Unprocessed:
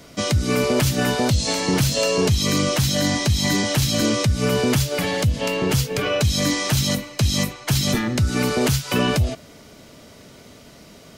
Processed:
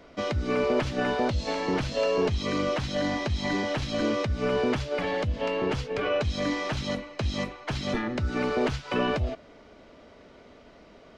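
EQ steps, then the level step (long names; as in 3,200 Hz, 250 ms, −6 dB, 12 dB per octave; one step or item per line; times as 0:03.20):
head-to-tape spacing loss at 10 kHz 32 dB
parametric band 130 Hz −14 dB 1.7 octaves
0.0 dB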